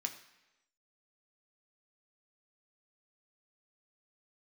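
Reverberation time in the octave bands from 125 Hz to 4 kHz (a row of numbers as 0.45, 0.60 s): 0.85, 0.95, 1.0, 1.0, 1.0, 0.95 s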